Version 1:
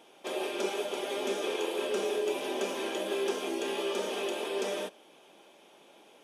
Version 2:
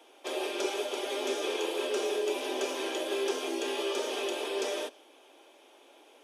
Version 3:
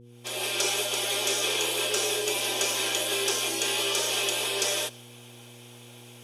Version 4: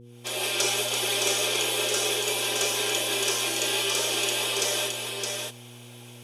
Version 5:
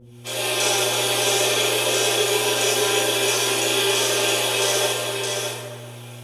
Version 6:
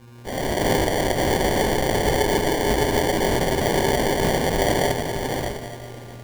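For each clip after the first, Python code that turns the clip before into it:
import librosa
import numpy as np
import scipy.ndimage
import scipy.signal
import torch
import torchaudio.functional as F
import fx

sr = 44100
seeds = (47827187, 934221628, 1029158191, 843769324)

y1 = scipy.signal.sosfilt(scipy.signal.butter(16, 250.0, 'highpass', fs=sr, output='sos'), x)
y1 = fx.dynamic_eq(y1, sr, hz=5000.0, q=1.1, threshold_db=-56.0, ratio=4.0, max_db=4)
y2 = fx.fade_in_head(y1, sr, length_s=0.55)
y2 = fx.tilt_eq(y2, sr, slope=4.0)
y2 = fx.dmg_buzz(y2, sr, base_hz=120.0, harmonics=4, level_db=-54.0, tilt_db=-4, odd_only=False)
y2 = y2 * librosa.db_to_amplitude(3.5)
y3 = fx.rider(y2, sr, range_db=4, speed_s=2.0)
y3 = y3 + 10.0 ** (-4.0 / 20.0) * np.pad(y3, (int(616 * sr / 1000.0), 0))[:len(y3)]
y4 = fx.rev_plate(y3, sr, seeds[0], rt60_s=1.8, hf_ratio=0.45, predelay_ms=0, drr_db=-8.0)
y4 = y4 * librosa.db_to_amplitude(-2.0)
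y5 = fx.sample_hold(y4, sr, seeds[1], rate_hz=1300.0, jitter_pct=0)
y5 = y5 + 10.0 ** (-19.0 / 20.0) * np.pad(y5, (int(645 * sr / 1000.0), 0))[:len(y5)]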